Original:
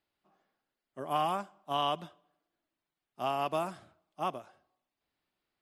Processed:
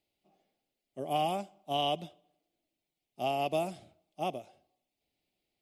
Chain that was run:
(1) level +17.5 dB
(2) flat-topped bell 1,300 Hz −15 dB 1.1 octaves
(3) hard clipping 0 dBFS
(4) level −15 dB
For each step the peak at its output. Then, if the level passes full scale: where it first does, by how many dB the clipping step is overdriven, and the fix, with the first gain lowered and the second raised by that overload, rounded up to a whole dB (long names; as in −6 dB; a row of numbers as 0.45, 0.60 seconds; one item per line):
−0.5, −3.5, −3.5, −18.5 dBFS
no step passes full scale